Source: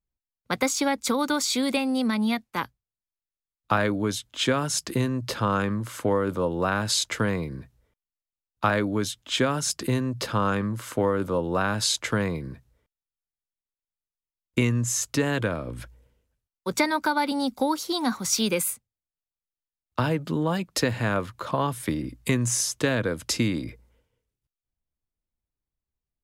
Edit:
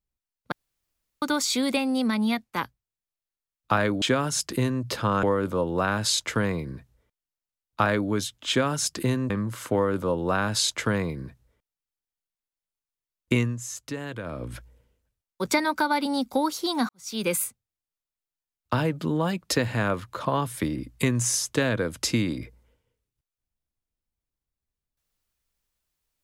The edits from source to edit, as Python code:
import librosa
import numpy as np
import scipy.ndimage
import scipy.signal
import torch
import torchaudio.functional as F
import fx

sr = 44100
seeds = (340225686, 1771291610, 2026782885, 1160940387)

y = fx.edit(x, sr, fx.room_tone_fill(start_s=0.52, length_s=0.7),
    fx.cut(start_s=4.02, length_s=0.38),
    fx.cut(start_s=5.61, length_s=0.46),
    fx.cut(start_s=10.14, length_s=0.42),
    fx.fade_down_up(start_s=14.66, length_s=0.99, db=-9.5, fade_s=0.17),
    fx.fade_in_span(start_s=18.15, length_s=0.4, curve='qua'), tone=tone)